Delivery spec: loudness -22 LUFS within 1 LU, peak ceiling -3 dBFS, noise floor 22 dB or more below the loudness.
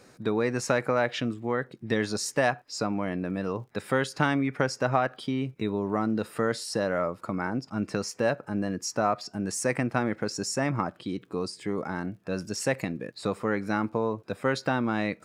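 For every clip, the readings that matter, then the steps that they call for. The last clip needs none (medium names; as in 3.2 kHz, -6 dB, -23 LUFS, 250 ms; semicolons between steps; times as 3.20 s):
tick rate 31 per s; loudness -29.0 LUFS; peak level -8.0 dBFS; loudness target -22.0 LUFS
-> de-click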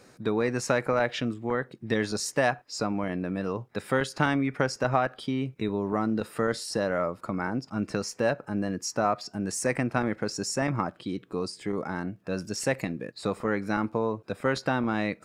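tick rate 0 per s; loudness -29.0 LUFS; peak level -8.0 dBFS; loudness target -22.0 LUFS
-> trim +7 dB; peak limiter -3 dBFS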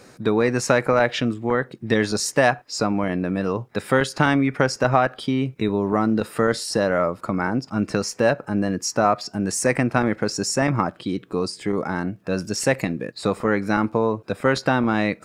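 loudness -22.5 LUFS; peak level -3.0 dBFS; noise floor -51 dBFS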